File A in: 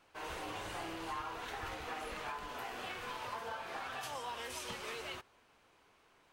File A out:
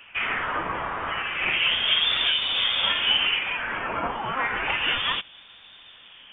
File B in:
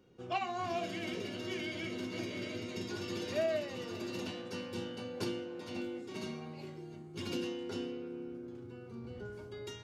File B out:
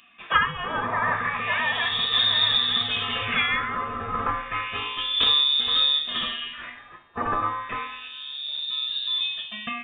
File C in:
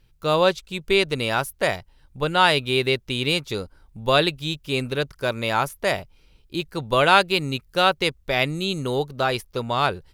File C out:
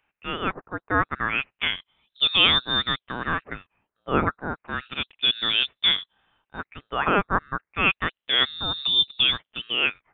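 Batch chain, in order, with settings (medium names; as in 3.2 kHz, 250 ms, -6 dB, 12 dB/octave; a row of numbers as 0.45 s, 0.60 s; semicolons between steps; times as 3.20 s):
LFO high-pass sine 0.31 Hz 410–3100 Hz; frequency inversion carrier 4 kHz; normalise loudness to -23 LUFS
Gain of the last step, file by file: +17.0 dB, +17.0 dB, -3.0 dB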